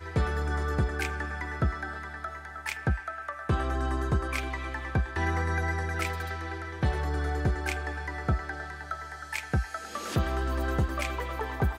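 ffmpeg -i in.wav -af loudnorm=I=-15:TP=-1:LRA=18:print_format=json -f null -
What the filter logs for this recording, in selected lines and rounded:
"input_i" : "-31.4",
"input_tp" : "-14.2",
"input_lra" : "1.6",
"input_thresh" : "-41.4",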